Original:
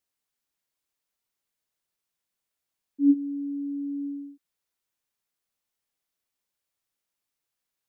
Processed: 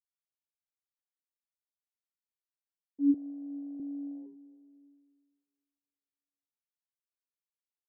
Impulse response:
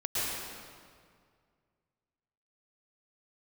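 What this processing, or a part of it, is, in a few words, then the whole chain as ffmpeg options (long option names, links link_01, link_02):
compressed reverb return: -filter_complex "[0:a]afwtdn=0.0158,asplit=2[link_01][link_02];[1:a]atrim=start_sample=2205[link_03];[link_02][link_03]afir=irnorm=-1:irlink=0,acompressor=threshold=-23dB:ratio=6,volume=-21.5dB[link_04];[link_01][link_04]amix=inputs=2:normalize=0,asettb=1/sr,asplit=3[link_05][link_06][link_07];[link_05]atrim=end=3.144[link_08];[link_06]atrim=start=3.14:end=3.8,asetpts=PTS-STARTPTS,afade=type=in:duration=0.004:curve=qsin,afade=type=out:start_time=0.656:duration=0.004:curve=qsin,highpass=270[link_09];[link_07]atrim=start=3.796[link_10];[link_08][link_09]acrossfade=duration=0.004:curve1=hsin:curve2=qsin[link_11];[link_11][link_10]acrossfade=duration=0.004:curve1=qsin:curve2=hsin,volume=-6dB"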